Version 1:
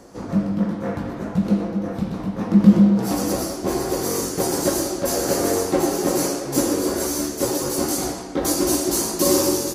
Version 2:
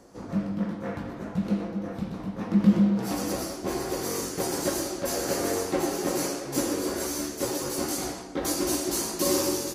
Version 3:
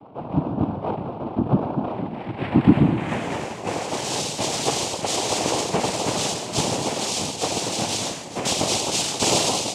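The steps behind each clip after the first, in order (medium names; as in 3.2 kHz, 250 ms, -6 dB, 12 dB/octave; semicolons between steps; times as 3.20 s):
dynamic bell 2.4 kHz, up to +5 dB, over -40 dBFS, Q 0.74; trim -7.5 dB
reverse echo 148 ms -18 dB; low-pass sweep 480 Hz -> 5.9 kHz, 1.75–4.22 s; noise-vocoded speech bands 4; trim +3.5 dB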